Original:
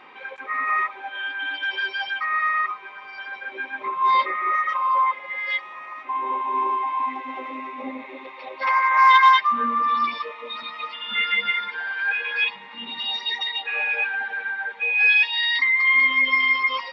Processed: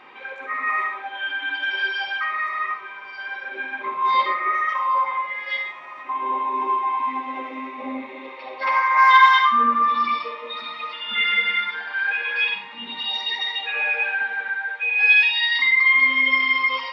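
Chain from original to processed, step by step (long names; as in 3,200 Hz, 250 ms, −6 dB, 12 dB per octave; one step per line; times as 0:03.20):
0:14.50–0:14.99: high-pass filter 780 Hz 6 dB per octave
convolution reverb RT60 0.50 s, pre-delay 42 ms, DRR 4 dB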